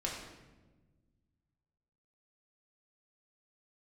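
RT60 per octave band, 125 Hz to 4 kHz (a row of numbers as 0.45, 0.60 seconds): 2.5, 2.1, 1.4, 1.0, 0.95, 0.80 seconds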